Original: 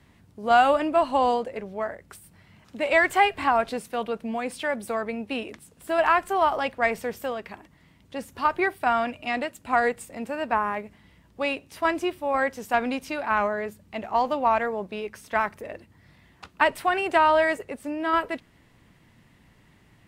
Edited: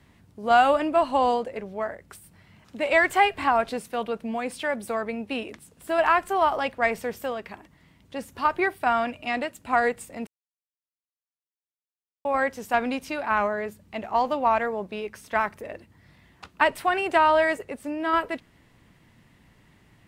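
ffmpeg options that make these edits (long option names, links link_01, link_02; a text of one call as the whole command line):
ffmpeg -i in.wav -filter_complex "[0:a]asplit=3[link_01][link_02][link_03];[link_01]atrim=end=10.27,asetpts=PTS-STARTPTS,afade=type=out:start_time=10.266:duration=0.004:curve=hsin[link_04];[link_02]atrim=start=10.27:end=12.25,asetpts=PTS-STARTPTS,volume=0[link_05];[link_03]atrim=start=12.25,asetpts=PTS-STARTPTS,afade=type=in:duration=0.004:curve=hsin[link_06];[link_04][link_05][link_06]concat=n=3:v=0:a=1" out.wav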